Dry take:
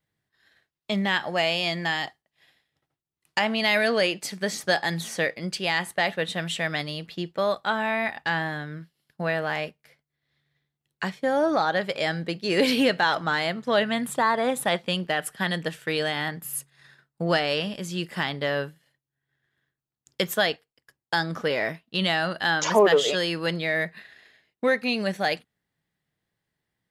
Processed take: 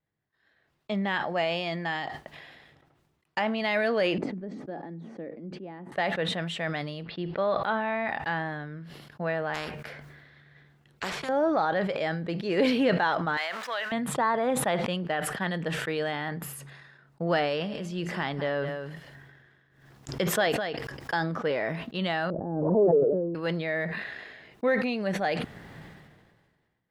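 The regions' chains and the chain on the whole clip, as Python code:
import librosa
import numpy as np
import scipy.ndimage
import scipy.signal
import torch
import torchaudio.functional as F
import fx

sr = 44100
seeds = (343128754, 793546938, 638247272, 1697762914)

y = fx.chain(x, sr, fx.bandpass_q(hz=270.0, q=2.5),
    fx.band_squash(depth_pct=40), at=(4.18, 5.92))
y = fx.chain(y, sr, fx.block_float(bits=7),
    fx.steep_lowpass(hz=4900.0, slope=48), at=(7.03, 8.08))
y = fx.chain(y, sr, fx.peak_eq(hz=1600.0, db=7.5, octaves=0.45),
    fx.spectral_comp(ratio=4.0), at=(9.54, 11.29))
y = fx.chain(y, sr, fx.zero_step(step_db=-34.0),
    fx.highpass(hz=1200.0, slope=12),
    fx.band_squash(depth_pct=70), at=(13.37, 13.92))
y = fx.chain(y, sr, fx.peak_eq(hz=5300.0, db=3.5, octaves=0.21),
    fx.echo_single(ms=206, db=-16.0),
    fx.pre_swell(db_per_s=80.0), at=(17.43, 21.17))
y = fx.chain(y, sr, fx.cheby2_lowpass(hz=2400.0, order=4, stop_db=70),
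    fx.pre_swell(db_per_s=39.0), at=(22.3, 23.35))
y = fx.lowpass(y, sr, hz=1100.0, slope=6)
y = fx.low_shelf(y, sr, hz=390.0, db=-4.0)
y = fx.sustainer(y, sr, db_per_s=35.0)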